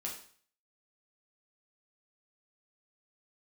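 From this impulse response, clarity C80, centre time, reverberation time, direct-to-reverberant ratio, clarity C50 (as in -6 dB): 10.5 dB, 27 ms, 0.50 s, -3.0 dB, 6.5 dB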